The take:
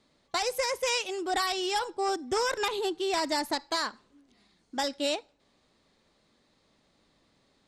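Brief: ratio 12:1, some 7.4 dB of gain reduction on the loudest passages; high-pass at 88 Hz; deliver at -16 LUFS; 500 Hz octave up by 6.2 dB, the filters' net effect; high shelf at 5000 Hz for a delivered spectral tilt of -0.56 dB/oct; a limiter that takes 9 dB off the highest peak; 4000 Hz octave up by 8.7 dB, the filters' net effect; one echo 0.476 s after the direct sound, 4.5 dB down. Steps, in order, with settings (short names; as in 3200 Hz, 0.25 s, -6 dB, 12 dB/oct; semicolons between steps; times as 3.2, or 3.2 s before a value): HPF 88 Hz; bell 500 Hz +7.5 dB; bell 4000 Hz +8 dB; high shelf 5000 Hz +5.5 dB; compressor 12:1, threshold -25 dBFS; limiter -24 dBFS; echo 0.476 s -4.5 dB; gain +16.5 dB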